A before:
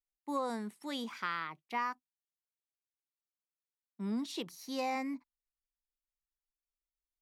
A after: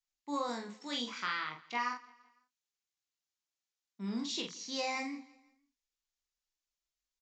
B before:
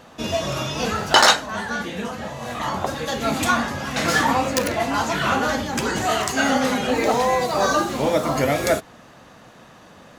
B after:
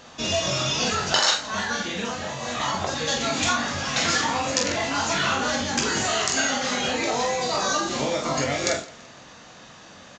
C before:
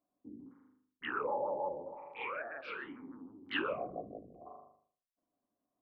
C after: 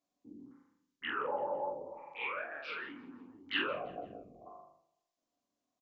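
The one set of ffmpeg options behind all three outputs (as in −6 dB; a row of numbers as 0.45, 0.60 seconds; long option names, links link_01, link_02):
-filter_complex "[0:a]acompressor=threshold=-21dB:ratio=5,asplit=2[link_01][link_02];[link_02]aecho=0:1:21|45|77:0.473|0.596|0.15[link_03];[link_01][link_03]amix=inputs=2:normalize=0,aresample=16000,aresample=44100,highshelf=frequency=2400:gain=11.5,asplit=2[link_04][link_05];[link_05]aecho=0:1:168|336|504:0.0794|0.0342|0.0147[link_06];[link_04][link_06]amix=inputs=2:normalize=0,volume=-4dB"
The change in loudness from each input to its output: +0.5, −2.5, +1.0 LU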